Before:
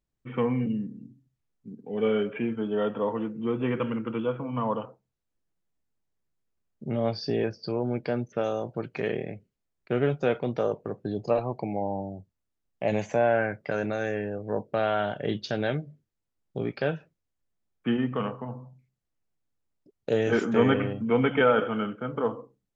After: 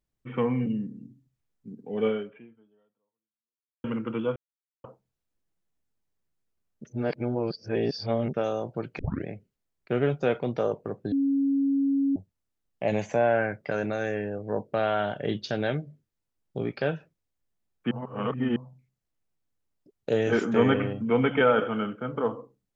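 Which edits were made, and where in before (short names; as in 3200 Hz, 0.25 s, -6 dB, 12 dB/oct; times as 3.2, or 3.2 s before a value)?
2.07–3.84 fade out exponential
4.36–4.84 mute
6.85–8.34 reverse
8.99 tape start 0.27 s
11.12–12.16 bleep 276 Hz -21 dBFS
17.91–18.56 reverse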